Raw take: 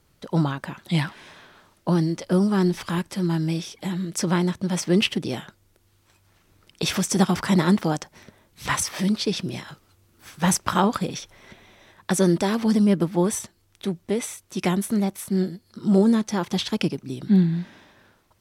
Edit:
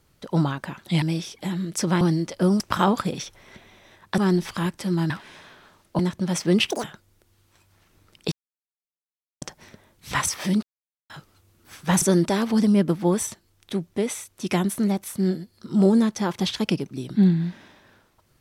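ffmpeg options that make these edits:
-filter_complex "[0:a]asplit=14[s0][s1][s2][s3][s4][s5][s6][s7][s8][s9][s10][s11][s12][s13];[s0]atrim=end=1.022[s14];[s1]atrim=start=3.418:end=4.412[s15];[s2]atrim=start=1.908:end=2.502[s16];[s3]atrim=start=10.558:end=12.142[s17];[s4]atrim=start=2.498:end=3.422[s18];[s5]atrim=start=1.018:end=1.912[s19];[s6]atrim=start=4.408:end=5.124[s20];[s7]atrim=start=5.12:end=5.38,asetpts=PTS-STARTPTS,asetrate=83790,aresample=44100[s21];[s8]atrim=start=5.376:end=6.86,asetpts=PTS-STARTPTS,afade=t=out:st=1.48:d=0.004:c=hsin[s22];[s9]atrim=start=6.86:end=7.96,asetpts=PTS-STARTPTS,volume=0[s23];[s10]atrim=start=7.96:end=9.17,asetpts=PTS-STARTPTS,afade=t=in:d=0.004:c=hsin,afade=t=out:st=1.206:d=0.004:c=hsin[s24];[s11]atrim=start=9.17:end=9.64,asetpts=PTS-STARTPTS,volume=0[s25];[s12]atrim=start=9.64:end=10.562,asetpts=PTS-STARTPTS,afade=t=in:d=0.004:c=hsin[s26];[s13]atrim=start=12.138[s27];[s14][s15]acrossfade=d=0.004:c1=hsin:c2=hsin[s28];[s28][s16]acrossfade=d=0.004:c1=hsin:c2=hsin[s29];[s29][s17]acrossfade=d=0.004:c1=hsin:c2=hsin[s30];[s30][s18]acrossfade=d=0.004:c1=hsin:c2=hsin[s31];[s31][s19]acrossfade=d=0.004:c1=hsin:c2=hsin[s32];[s32][s20]acrossfade=d=0.004:c1=hsin:c2=hsin[s33];[s33][s21]acrossfade=d=0.004:c1=hsin:c2=hsin[s34];[s22][s23][s24][s25][s26]concat=n=5:v=0:a=1[s35];[s34][s35]acrossfade=d=0.004:c1=hsin:c2=hsin[s36];[s36][s27]acrossfade=d=0.004:c1=hsin:c2=hsin"

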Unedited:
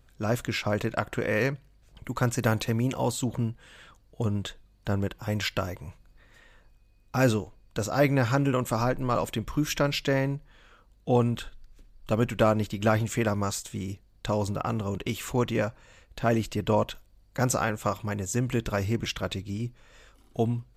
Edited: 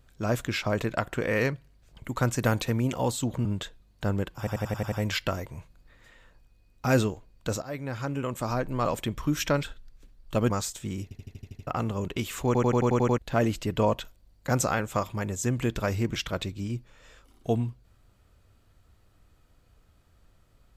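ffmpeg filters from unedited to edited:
-filter_complex "[0:a]asplit=27[s0][s1][s2][s3][s4][s5][s6][s7][s8][s9][s10][s11][s12][s13][s14][s15][s16][s17][s18][s19][s20][s21][s22][s23][s24][s25][s26];[s0]atrim=end=3.452[s27];[s1]atrim=start=4.288:end=5.312[s28];[s2]atrim=start=5.218:end=5.312[s29];[s3]atrim=start=5.218:end=5.312[s30];[s4]atrim=start=5.218:end=5.312[s31];[s5]atrim=start=5.218:end=5.312[s32];[s6]atrim=start=5.218:end=5.312[s33];[s7]atrim=start=5.218:end=7.92,asetpts=PTS-STARTPTS,afade=t=out:st=2.698:d=0.004:c=hsin:silence=0.141254[s34];[s8]atrim=start=7.92:end=9.932,asetpts=PTS-STARTPTS,afade=t=in:d=1.36:silence=0.141254[s35];[s9]atrim=start=11.388:end=12.262[s36];[s10]atrim=start=13.398:end=14.012[s37];[s11]atrim=start=13.928:end=14.012[s38];[s12]atrim=start=13.928:end=14.012[s39];[s13]atrim=start=13.928:end=14.012[s40];[s14]atrim=start=13.928:end=14.012[s41];[s15]atrim=start=13.928:end=14.012[s42];[s16]atrim=start=13.928:end=14.012[s43];[s17]atrim=start=13.928:end=14.012[s44];[s18]atrim=start=14.568:end=15.452[s45];[s19]atrim=start=15.358:end=15.452[s46];[s20]atrim=start=15.358:end=15.452[s47];[s21]atrim=start=15.358:end=15.452[s48];[s22]atrim=start=15.358:end=15.452[s49];[s23]atrim=start=15.358:end=15.452[s50];[s24]atrim=start=15.358:end=15.452[s51];[s25]atrim=start=15.358:end=15.452[s52];[s26]atrim=start=16.078[s53];[s27][s28]acrossfade=d=0.004:c1=hsin:c2=hsin[s54];[s54][s29]acrossfade=d=0.004:c1=hsin:c2=hsin[s55];[s55][s30]acrossfade=d=0.004:c1=hsin:c2=hsin[s56];[s56][s31]acrossfade=d=0.004:c1=hsin:c2=hsin[s57];[s57][s32]acrossfade=d=0.004:c1=hsin:c2=hsin[s58];[s58][s33]acrossfade=d=0.004:c1=hsin:c2=hsin[s59];[s34][s35]concat=n=2:v=0:a=1[s60];[s59][s60]acrossfade=d=0.004:c1=hsin:c2=hsin[s61];[s61][s36]acrossfade=d=0.004:c1=hsin:c2=hsin[s62];[s62][s37]acrossfade=d=0.004:c1=hsin:c2=hsin[s63];[s63][s38]acrossfade=d=0.004:c1=hsin:c2=hsin[s64];[s64][s39]acrossfade=d=0.004:c1=hsin:c2=hsin[s65];[s65][s40]acrossfade=d=0.004:c1=hsin:c2=hsin[s66];[s66][s41]acrossfade=d=0.004:c1=hsin:c2=hsin[s67];[s67][s42]acrossfade=d=0.004:c1=hsin:c2=hsin[s68];[s68][s43]acrossfade=d=0.004:c1=hsin:c2=hsin[s69];[s69][s44]acrossfade=d=0.004:c1=hsin:c2=hsin[s70];[s70][s45]acrossfade=d=0.004:c1=hsin:c2=hsin[s71];[s71][s46]acrossfade=d=0.004:c1=hsin:c2=hsin[s72];[s72][s47]acrossfade=d=0.004:c1=hsin:c2=hsin[s73];[s73][s48]acrossfade=d=0.004:c1=hsin:c2=hsin[s74];[s74][s49]acrossfade=d=0.004:c1=hsin:c2=hsin[s75];[s75][s50]acrossfade=d=0.004:c1=hsin:c2=hsin[s76];[s76][s51]acrossfade=d=0.004:c1=hsin:c2=hsin[s77];[s77][s52]acrossfade=d=0.004:c1=hsin:c2=hsin[s78];[s78][s53]acrossfade=d=0.004:c1=hsin:c2=hsin"

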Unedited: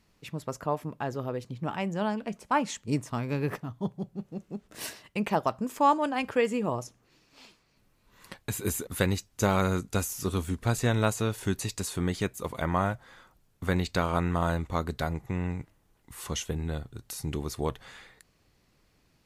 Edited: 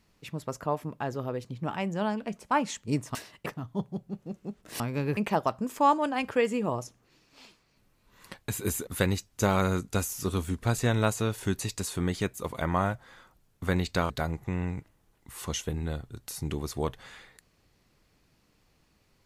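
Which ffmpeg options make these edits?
-filter_complex "[0:a]asplit=6[s0][s1][s2][s3][s4][s5];[s0]atrim=end=3.152[s6];[s1]atrim=start=4.858:end=5.172[s7];[s2]atrim=start=3.518:end=4.862[s8];[s3]atrim=start=3.148:end=3.522[s9];[s4]atrim=start=5.168:end=14.102[s10];[s5]atrim=start=14.918[s11];[s6][s7]acrossfade=d=0.004:c1=hsin:c2=hsin[s12];[s12][s8]acrossfade=d=0.004:c1=hsin:c2=hsin[s13];[s13][s9]acrossfade=d=0.004:c1=hsin:c2=hsin[s14];[s14][s10]acrossfade=d=0.004:c1=hsin:c2=hsin[s15];[s15][s11]acrossfade=d=0.004:c1=hsin:c2=hsin"

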